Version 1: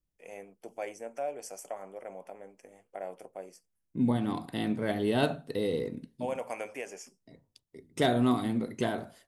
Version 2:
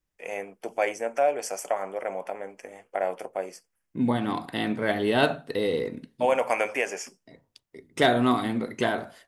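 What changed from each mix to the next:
first voice +6.0 dB; master: add FFT filter 150 Hz 0 dB, 1.7 kHz +10 dB, 9.3 kHz +2 dB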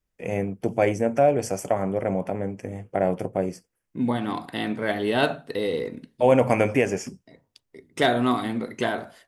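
first voice: remove high-pass 670 Hz 12 dB/octave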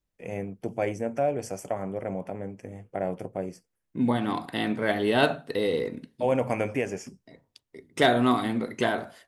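first voice -7.0 dB

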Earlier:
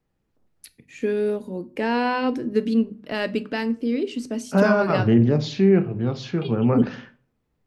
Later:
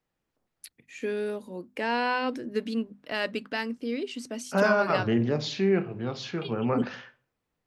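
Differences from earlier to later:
first voice: send off; master: add bass shelf 410 Hz -11.5 dB

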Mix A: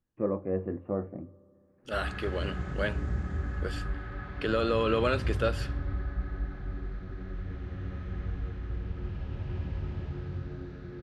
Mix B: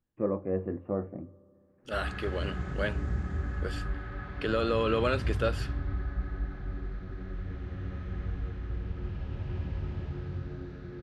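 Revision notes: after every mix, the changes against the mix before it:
second voice: send off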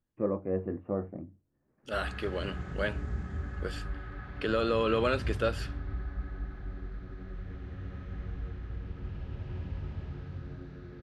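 reverb: off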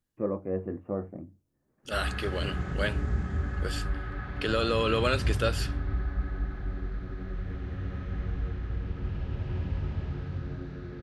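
second voice: add treble shelf 3.1 kHz +12 dB; background +6.0 dB

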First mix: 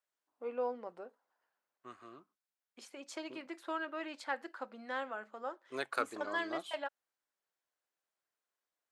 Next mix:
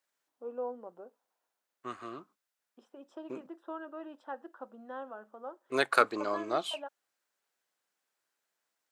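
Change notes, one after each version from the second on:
first voice: add boxcar filter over 20 samples; second voice +10.5 dB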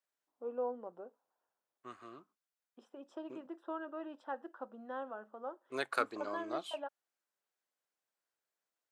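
second voice -9.0 dB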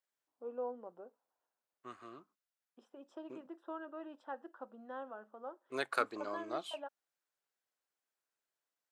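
first voice -3.0 dB

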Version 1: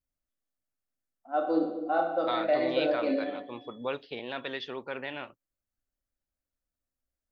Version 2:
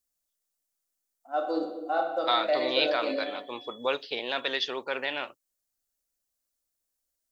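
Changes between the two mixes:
second voice +5.5 dB; master: add tone controls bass -14 dB, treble +13 dB

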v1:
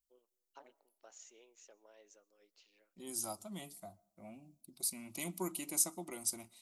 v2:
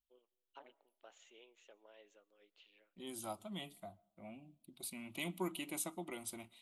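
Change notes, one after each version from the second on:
master: add resonant high shelf 4.2 kHz -8.5 dB, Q 3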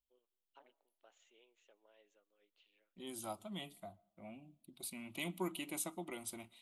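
first voice -7.0 dB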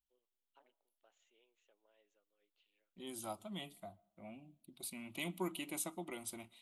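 first voice -5.5 dB

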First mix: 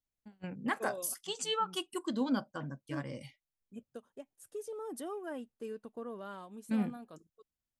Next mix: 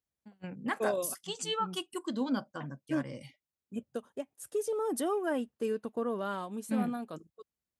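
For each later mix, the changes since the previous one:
second voice +9.5 dB; master: add high-pass 68 Hz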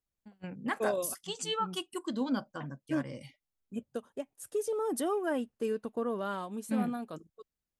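master: remove high-pass 68 Hz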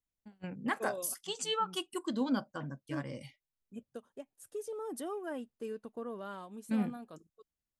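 second voice -8.0 dB

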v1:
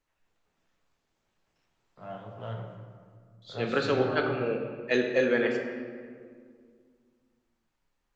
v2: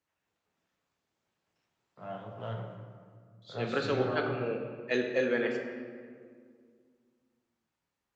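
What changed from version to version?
second voice -4.0 dB; master: add high-pass 85 Hz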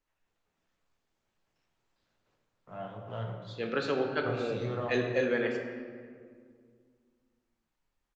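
first voice: entry +0.70 s; master: remove high-pass 85 Hz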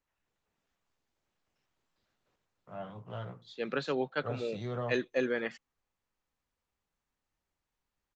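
reverb: off

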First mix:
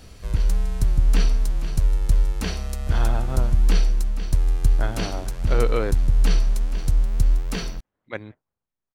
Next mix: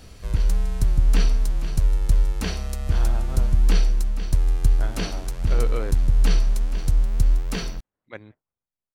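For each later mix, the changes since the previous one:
speech -6.5 dB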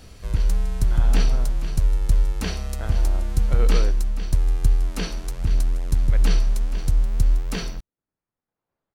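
speech: entry -2.00 s

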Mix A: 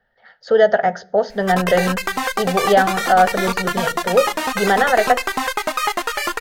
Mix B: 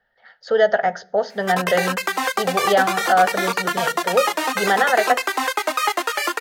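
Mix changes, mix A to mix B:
speech: add bass shelf 500 Hz -7 dB; background: add steep high-pass 260 Hz 96 dB/octave

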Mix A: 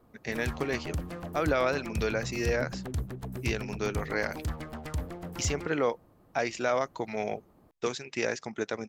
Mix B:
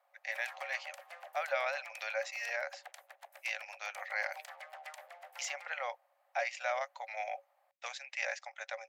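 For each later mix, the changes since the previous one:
master: add rippled Chebyshev high-pass 540 Hz, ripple 9 dB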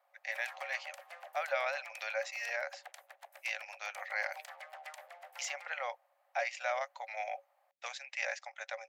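no change

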